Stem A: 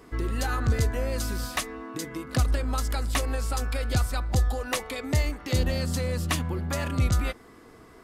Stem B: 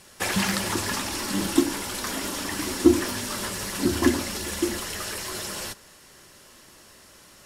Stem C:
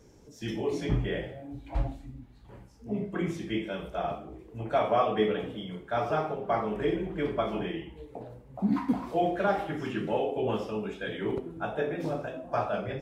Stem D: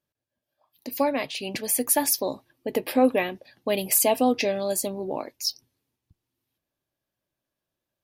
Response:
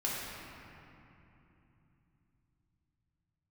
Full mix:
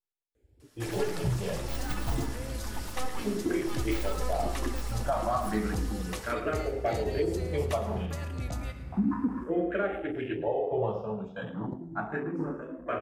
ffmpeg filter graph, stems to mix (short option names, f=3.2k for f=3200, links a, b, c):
-filter_complex "[0:a]adelay=1400,volume=-13.5dB,asplit=3[a][b][c];[b]volume=-10dB[d];[c]volume=-12.5dB[e];[1:a]adelay=600,volume=-15dB[f];[2:a]afwtdn=0.01,asplit=2[g][h];[h]afreqshift=0.31[i];[g][i]amix=inputs=2:normalize=1,adelay=350,volume=3dB,asplit=2[j][k];[k]volume=-16dB[l];[3:a]aeval=exprs='abs(val(0))':c=same,aecho=1:1:2.3:0.67,volume=-17.5dB,asplit=3[m][n][o];[n]volume=-15dB[p];[o]volume=-8dB[q];[4:a]atrim=start_sample=2205[r];[d][p]amix=inputs=2:normalize=0[s];[s][r]afir=irnorm=-1:irlink=0[t];[e][l][q]amix=inputs=3:normalize=0,aecho=0:1:109:1[u];[a][f][j][m][t][u]amix=inputs=6:normalize=0,alimiter=limit=-18.5dB:level=0:latency=1:release=192"